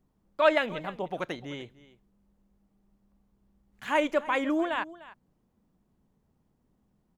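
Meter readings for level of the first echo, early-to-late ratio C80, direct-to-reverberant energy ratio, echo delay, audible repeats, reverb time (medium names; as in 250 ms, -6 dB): -18.5 dB, no reverb, no reverb, 300 ms, 1, no reverb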